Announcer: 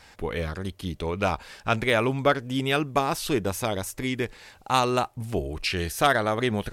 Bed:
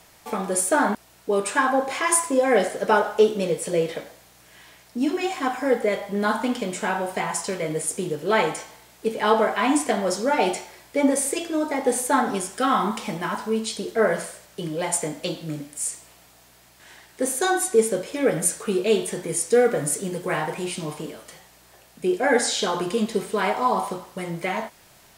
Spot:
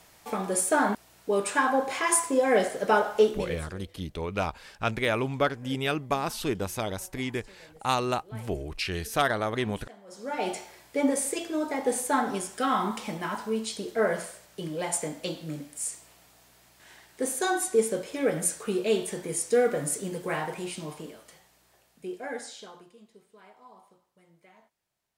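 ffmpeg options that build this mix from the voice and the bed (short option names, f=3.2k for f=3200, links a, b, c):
-filter_complex "[0:a]adelay=3150,volume=-4dB[a];[1:a]volume=19dB,afade=t=out:st=3.2:d=0.53:silence=0.0630957,afade=t=in:st=10.07:d=0.58:silence=0.0749894,afade=t=out:st=20.28:d=2.65:silence=0.0501187[b];[a][b]amix=inputs=2:normalize=0"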